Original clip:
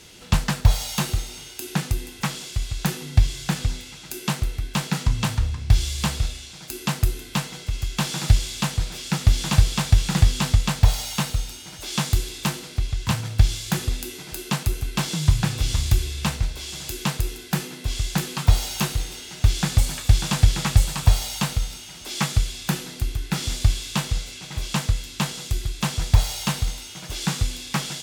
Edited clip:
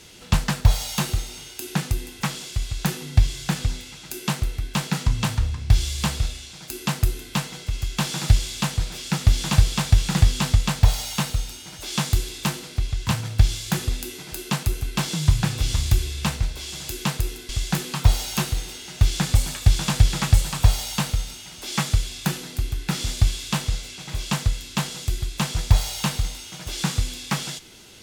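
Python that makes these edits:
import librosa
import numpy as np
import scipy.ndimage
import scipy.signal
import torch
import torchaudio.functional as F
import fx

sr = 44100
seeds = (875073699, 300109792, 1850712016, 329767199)

y = fx.edit(x, sr, fx.cut(start_s=17.49, length_s=0.43), tone=tone)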